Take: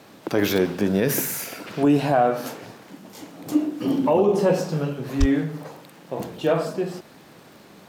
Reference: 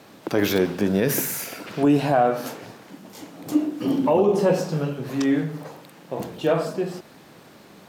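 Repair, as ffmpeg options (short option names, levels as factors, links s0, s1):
-filter_complex "[0:a]adeclick=t=4,asplit=3[s0][s1][s2];[s0]afade=t=out:st=5.19:d=0.02[s3];[s1]highpass=f=140:w=0.5412,highpass=f=140:w=1.3066,afade=t=in:st=5.19:d=0.02,afade=t=out:st=5.31:d=0.02[s4];[s2]afade=t=in:st=5.31:d=0.02[s5];[s3][s4][s5]amix=inputs=3:normalize=0"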